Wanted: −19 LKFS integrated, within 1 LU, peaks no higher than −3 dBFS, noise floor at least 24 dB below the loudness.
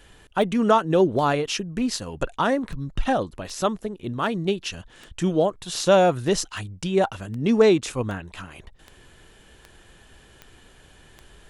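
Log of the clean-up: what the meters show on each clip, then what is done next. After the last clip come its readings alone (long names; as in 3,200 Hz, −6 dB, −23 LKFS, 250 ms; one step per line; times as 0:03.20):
number of clicks 15; integrated loudness −23.5 LKFS; sample peak −5.0 dBFS; target loudness −19.0 LKFS
→ click removal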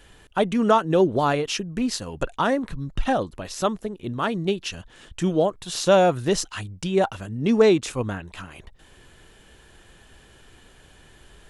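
number of clicks 0; integrated loudness −23.5 LKFS; sample peak −5.0 dBFS; target loudness −19.0 LKFS
→ level +4.5 dB
brickwall limiter −3 dBFS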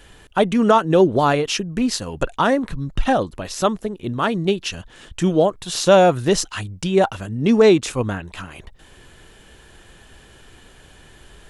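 integrated loudness −19.0 LKFS; sample peak −3.0 dBFS; background noise floor −48 dBFS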